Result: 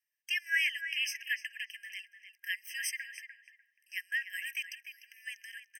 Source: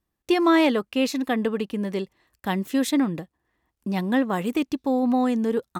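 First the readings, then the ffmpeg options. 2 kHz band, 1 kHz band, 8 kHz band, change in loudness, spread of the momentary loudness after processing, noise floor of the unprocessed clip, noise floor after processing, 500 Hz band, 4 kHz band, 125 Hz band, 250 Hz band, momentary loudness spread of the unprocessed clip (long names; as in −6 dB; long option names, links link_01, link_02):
0.0 dB, below −40 dB, −3.0 dB, −11.5 dB, 17 LU, −82 dBFS, −83 dBFS, below −40 dB, −4.0 dB, below −40 dB, below −40 dB, 10 LU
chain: -filter_complex "[0:a]asplit=2[link_01][link_02];[link_02]adelay=298,lowpass=frequency=2300:poles=1,volume=-7.5dB,asplit=2[link_03][link_04];[link_04]adelay=298,lowpass=frequency=2300:poles=1,volume=0.23,asplit=2[link_05][link_06];[link_06]adelay=298,lowpass=frequency=2300:poles=1,volume=0.23[link_07];[link_01][link_03][link_05][link_07]amix=inputs=4:normalize=0,afftfilt=real='re*eq(mod(floor(b*sr/1024/1600),2),1)':imag='im*eq(mod(floor(b*sr/1024/1600),2),1)':win_size=1024:overlap=0.75"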